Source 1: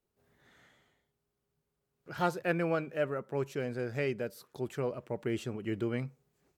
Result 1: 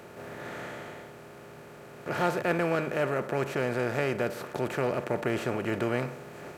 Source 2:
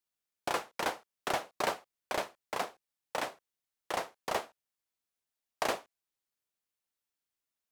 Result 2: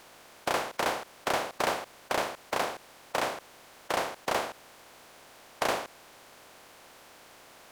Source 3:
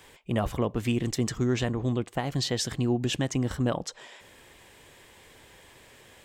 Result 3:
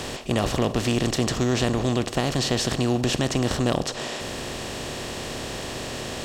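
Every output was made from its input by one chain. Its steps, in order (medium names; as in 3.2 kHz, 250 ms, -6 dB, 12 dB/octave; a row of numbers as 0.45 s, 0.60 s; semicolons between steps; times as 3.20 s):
spectral levelling over time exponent 0.4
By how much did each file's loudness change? +4.5 LU, +4.5 LU, +3.5 LU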